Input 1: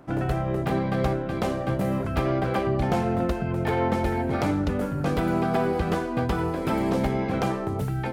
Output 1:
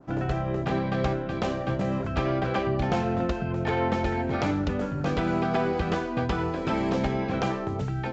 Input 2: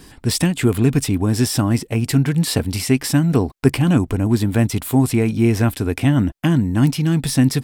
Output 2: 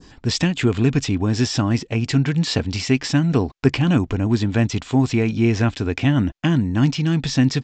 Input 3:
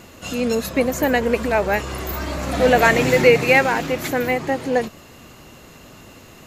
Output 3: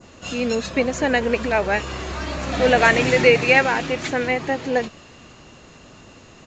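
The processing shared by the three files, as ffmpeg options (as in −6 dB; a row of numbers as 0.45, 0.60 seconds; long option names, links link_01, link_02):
-af "bandreject=frequency=2100:width=29,adynamicequalizer=threshold=0.0141:dfrequency=2700:dqfactor=0.74:tfrequency=2700:tqfactor=0.74:attack=5:release=100:ratio=0.375:range=2:mode=boostabove:tftype=bell,aresample=16000,aresample=44100,volume=-2dB"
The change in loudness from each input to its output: −1.5, −2.0, −1.0 LU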